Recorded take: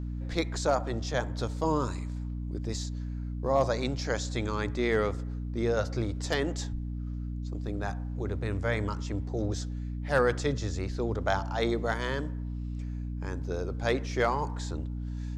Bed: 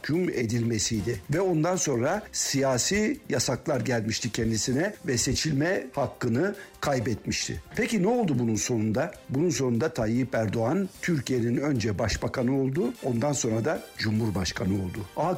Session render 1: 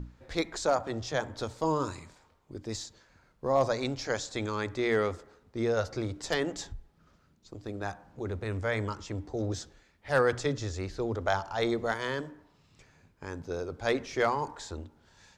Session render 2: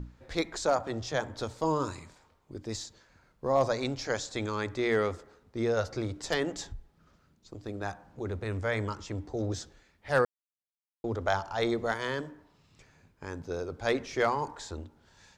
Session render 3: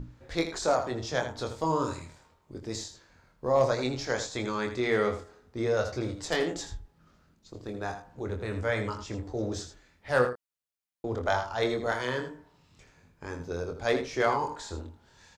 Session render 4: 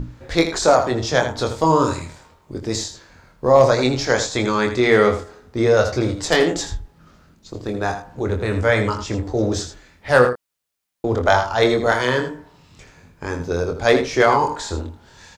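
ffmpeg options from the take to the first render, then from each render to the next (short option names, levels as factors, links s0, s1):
-af "bandreject=f=60:t=h:w=6,bandreject=f=120:t=h:w=6,bandreject=f=180:t=h:w=6,bandreject=f=240:t=h:w=6,bandreject=f=300:t=h:w=6"
-filter_complex "[0:a]asplit=3[s0][s1][s2];[s0]atrim=end=10.25,asetpts=PTS-STARTPTS,afade=t=out:st=10.246:d=0.004:c=hsin[s3];[s1]atrim=start=10.25:end=11.04,asetpts=PTS-STARTPTS,volume=0[s4];[s2]atrim=start=11.04,asetpts=PTS-STARTPTS,afade=t=in:d=0.004:c=hsin[s5];[s3][s4][s5]concat=n=3:v=0:a=1"
-filter_complex "[0:a]asplit=2[s0][s1];[s1]adelay=24,volume=0.501[s2];[s0][s2]amix=inputs=2:normalize=0,asplit=2[s3][s4];[s4]aecho=0:1:81:0.316[s5];[s3][s5]amix=inputs=2:normalize=0"
-af "volume=3.98,alimiter=limit=0.708:level=0:latency=1"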